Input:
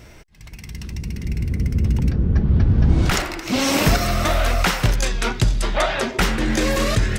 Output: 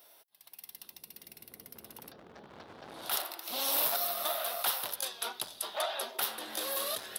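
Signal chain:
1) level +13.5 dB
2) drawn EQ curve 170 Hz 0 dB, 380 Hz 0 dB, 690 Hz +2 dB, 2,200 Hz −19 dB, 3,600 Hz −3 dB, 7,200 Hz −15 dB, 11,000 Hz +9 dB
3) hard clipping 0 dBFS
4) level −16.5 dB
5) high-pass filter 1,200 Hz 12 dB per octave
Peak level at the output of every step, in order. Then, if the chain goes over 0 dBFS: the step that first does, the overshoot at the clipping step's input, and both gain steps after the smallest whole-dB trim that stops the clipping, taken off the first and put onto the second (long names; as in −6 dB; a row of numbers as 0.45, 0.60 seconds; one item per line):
+9.0, +9.5, 0.0, −16.5, −15.5 dBFS
step 1, 9.5 dB
step 1 +3.5 dB, step 4 −6.5 dB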